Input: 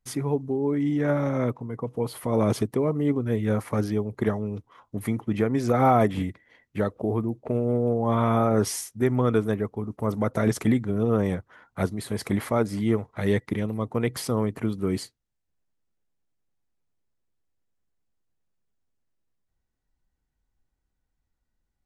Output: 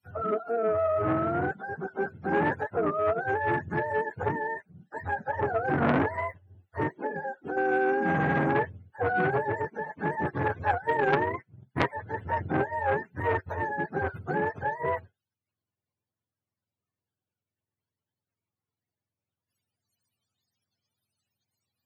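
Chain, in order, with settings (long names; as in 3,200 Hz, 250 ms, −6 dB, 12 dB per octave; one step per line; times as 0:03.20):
frequency axis turned over on the octave scale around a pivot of 430 Hz
0:07.06–0:07.57: downward compressor 6 to 1, threshold −30 dBFS, peak gain reduction 7 dB
0:10.65–0:11.93: transient designer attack +11 dB, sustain −6 dB
saturating transformer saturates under 1,700 Hz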